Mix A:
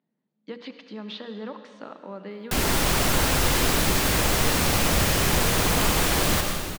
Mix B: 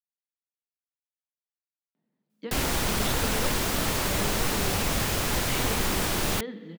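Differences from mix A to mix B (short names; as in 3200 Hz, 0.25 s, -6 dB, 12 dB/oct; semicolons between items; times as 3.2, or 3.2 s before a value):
speech: entry +1.95 s; background: send off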